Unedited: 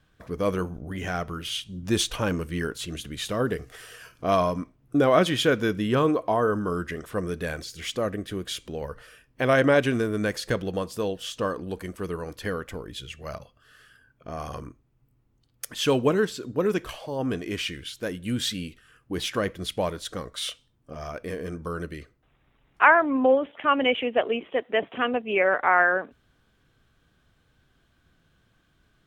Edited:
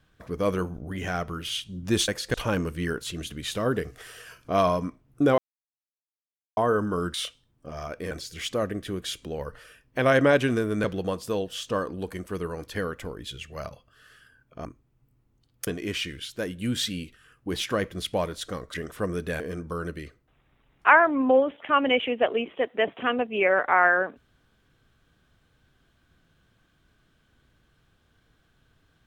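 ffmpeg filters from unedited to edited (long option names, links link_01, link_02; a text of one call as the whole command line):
ffmpeg -i in.wav -filter_complex "[0:a]asplit=12[link_01][link_02][link_03][link_04][link_05][link_06][link_07][link_08][link_09][link_10][link_11][link_12];[link_01]atrim=end=2.082[link_13];[link_02]atrim=start=10.268:end=10.532[link_14];[link_03]atrim=start=2.078:end=5.12,asetpts=PTS-STARTPTS,afade=type=out:start_time=3.038:duration=0.004:curve=hsin[link_15];[link_04]atrim=start=5.12:end=6.31,asetpts=PTS-STARTPTS,volume=0[link_16];[link_05]atrim=start=6.31:end=6.882,asetpts=PTS-STARTPTS,afade=type=in:duration=0.004:curve=hsin[link_17];[link_06]atrim=start=20.378:end=21.352[link_18];[link_07]atrim=start=7.538:end=10.272[link_19];[link_08]atrim=start=10.528:end=14.342[link_20];[link_09]atrim=start=14.648:end=15.672[link_21];[link_10]atrim=start=17.308:end=20.382[link_22];[link_11]atrim=start=6.878:end=7.542[link_23];[link_12]atrim=start=21.348[link_24];[link_13][link_14]acrossfade=duration=0.004:curve1=hsin:curve2=hsin[link_25];[link_15][link_16][link_17]concat=n=3:v=0:a=1[link_26];[link_25][link_26]acrossfade=duration=0.004:curve1=hsin:curve2=hsin[link_27];[link_27][link_18]acrossfade=duration=0.004:curve1=hsin:curve2=hsin[link_28];[link_28][link_19]acrossfade=duration=0.004:curve1=hsin:curve2=hsin[link_29];[link_29][link_20]acrossfade=duration=0.004:curve1=hsin:curve2=hsin[link_30];[link_30][link_21]acrossfade=duration=0.004:curve1=hsin:curve2=hsin[link_31];[link_31][link_22]acrossfade=duration=0.004:curve1=hsin:curve2=hsin[link_32];[link_32][link_23]acrossfade=duration=0.004:curve1=hsin:curve2=hsin[link_33];[link_33][link_24]acrossfade=duration=0.004:curve1=hsin:curve2=hsin" out.wav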